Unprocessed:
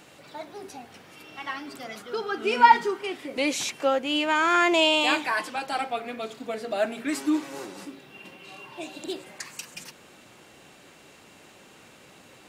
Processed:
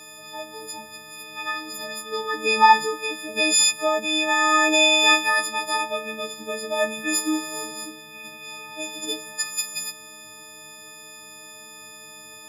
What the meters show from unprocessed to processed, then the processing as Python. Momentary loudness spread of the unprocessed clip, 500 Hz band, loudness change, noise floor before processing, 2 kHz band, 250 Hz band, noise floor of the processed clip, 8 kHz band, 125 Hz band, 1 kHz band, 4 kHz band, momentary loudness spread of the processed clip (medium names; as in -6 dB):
23 LU, +1.0 dB, +3.5 dB, -53 dBFS, +5.5 dB, -0.5 dB, -43 dBFS, +13.5 dB, no reading, +2.0 dB, +6.5 dB, 25 LU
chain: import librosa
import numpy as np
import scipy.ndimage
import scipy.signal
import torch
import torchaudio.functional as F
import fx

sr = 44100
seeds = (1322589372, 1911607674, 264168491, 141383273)

y = fx.freq_snap(x, sr, grid_st=6)